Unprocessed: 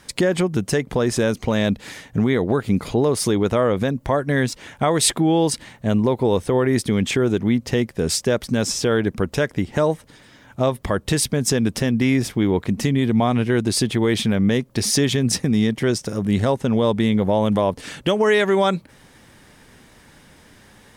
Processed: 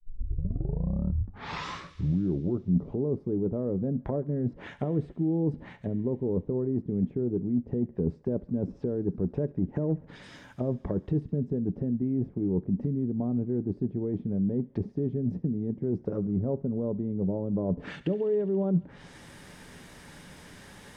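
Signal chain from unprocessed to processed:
turntable start at the beginning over 2.97 s
treble cut that deepens with the level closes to 310 Hz, closed at −18.5 dBFS
dynamic equaliser 400 Hz, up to +5 dB, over −32 dBFS, Q 0.74
reversed playback
downward compressor, threshold −26 dBFS, peak gain reduction 13 dB
reversed playback
feedback echo with a high-pass in the loop 69 ms, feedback 84%, high-pass 970 Hz, level −18 dB
on a send at −14 dB: convolution reverb RT60 0.15 s, pre-delay 3 ms

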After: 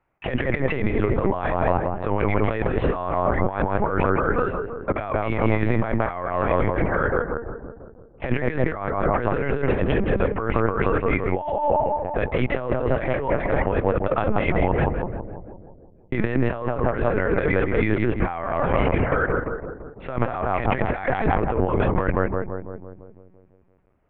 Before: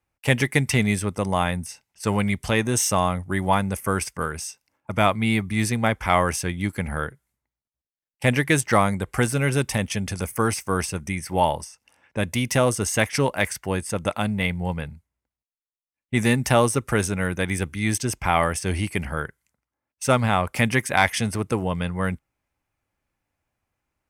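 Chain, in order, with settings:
three-way crossover with the lows and the highs turned down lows −15 dB, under 250 Hz, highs −23 dB, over 2,800 Hz
on a send: feedback echo with a low-pass in the loop 169 ms, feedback 62%, low-pass 1,300 Hz, level −4.5 dB
on the sum: linear-prediction vocoder at 8 kHz pitch kept
compressor whose output falls as the input rises −30 dBFS, ratio −1
high-shelf EQ 2,500 Hz −11 dB
level +8.5 dB

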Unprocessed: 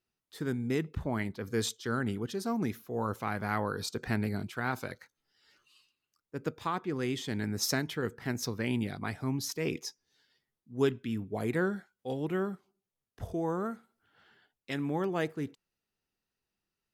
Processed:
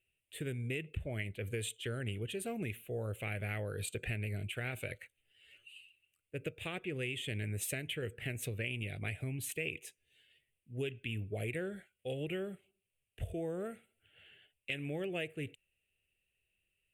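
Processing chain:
drawn EQ curve 100 Hz 0 dB, 240 Hz −15 dB, 350 Hz −9 dB, 600 Hz −4 dB, 1,000 Hz −27 dB, 2,700 Hz +9 dB, 5,300 Hz −27 dB, 8,500 Hz +2 dB, 14,000 Hz −7 dB
downward compressor, threshold −41 dBFS, peak gain reduction 11.5 dB
level +6 dB

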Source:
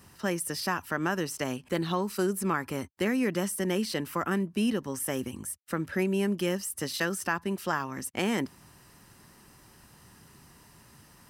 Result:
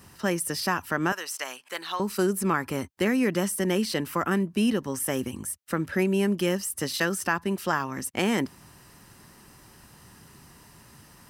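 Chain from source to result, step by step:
0:01.12–0:02.00: high-pass filter 920 Hz 12 dB per octave
level +3.5 dB

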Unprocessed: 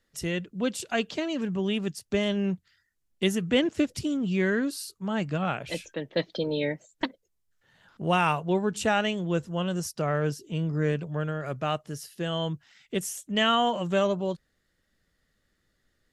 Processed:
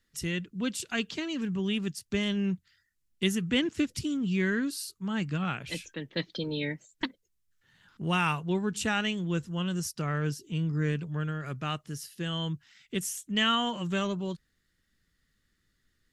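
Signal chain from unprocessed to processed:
parametric band 620 Hz −12.5 dB 1.1 octaves

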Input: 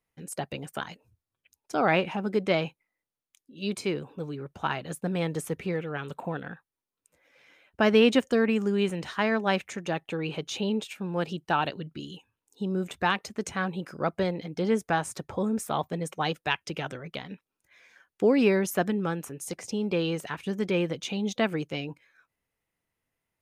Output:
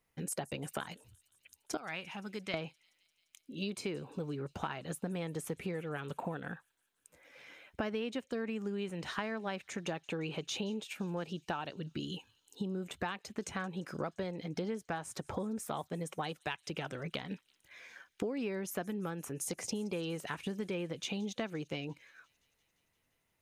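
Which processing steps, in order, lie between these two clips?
0:01.77–0:02.54: guitar amp tone stack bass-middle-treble 5-5-5
downward compressor 8 to 1, threshold −39 dBFS, peak gain reduction 22.5 dB
on a send: delay with a high-pass on its return 173 ms, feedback 76%, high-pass 4,400 Hz, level −20.5 dB
on the sum: level +4 dB

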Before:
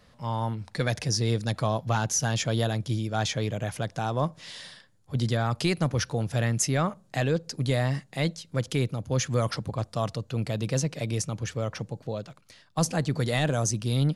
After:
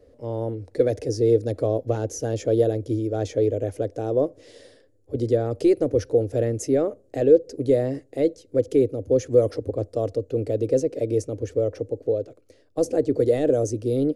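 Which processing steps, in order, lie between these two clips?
drawn EQ curve 100 Hz 0 dB, 180 Hz −20 dB, 270 Hz +6 dB, 480 Hz +12 dB, 960 Hz −17 dB, 2,000 Hz −13 dB, 3,500 Hz −17 dB, 6,500 Hz −11 dB
level +3 dB

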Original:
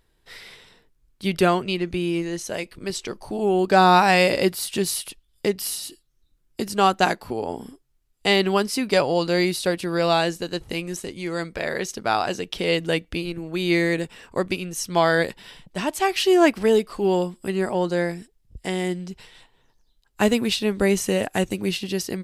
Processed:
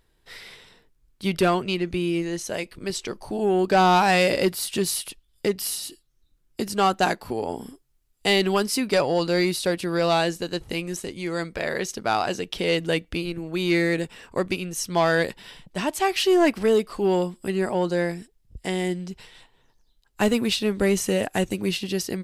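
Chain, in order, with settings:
0:07.25–0:08.80: high-shelf EQ 6,300 Hz +4.5 dB
soft clipping −11 dBFS, distortion −17 dB

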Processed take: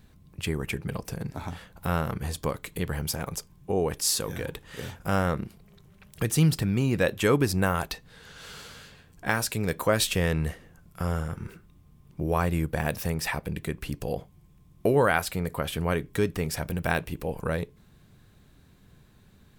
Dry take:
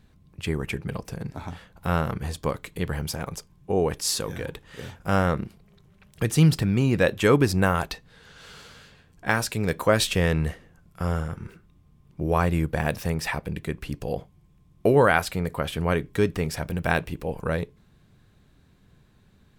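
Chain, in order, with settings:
in parallel at +1 dB: downward compressor, threshold −33 dBFS, peak gain reduction 18.5 dB
on the sum: high-shelf EQ 9,500 Hz +9 dB
level −5 dB

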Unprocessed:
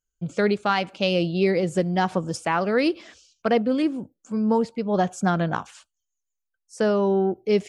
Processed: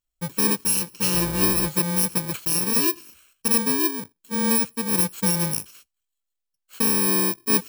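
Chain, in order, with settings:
samples in bit-reversed order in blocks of 64 samples
0:01.13–0:01.67: hum with harmonics 60 Hz, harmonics 30, −34 dBFS −5 dB per octave

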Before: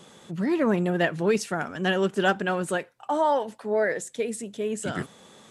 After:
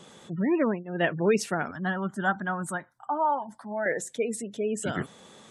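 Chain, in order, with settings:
gate on every frequency bin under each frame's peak −30 dB strong
0:00.60–0:01.08: duck −23.5 dB, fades 0.24 s
0:01.71–0:03.86: phaser with its sweep stopped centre 1,100 Hz, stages 4

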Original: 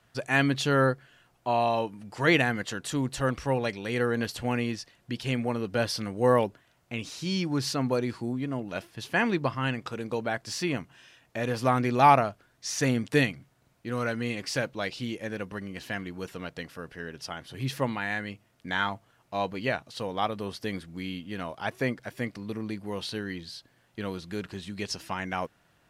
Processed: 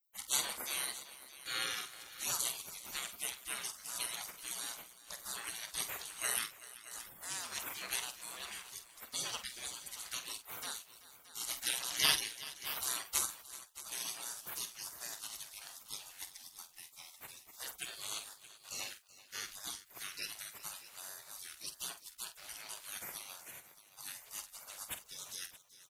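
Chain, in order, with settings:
spectral tilt +2.5 dB per octave
gate on every frequency bin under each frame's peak −30 dB weak
multi-tap delay 47/381/623 ms −10.5/−17/−15.5 dB
level +10 dB

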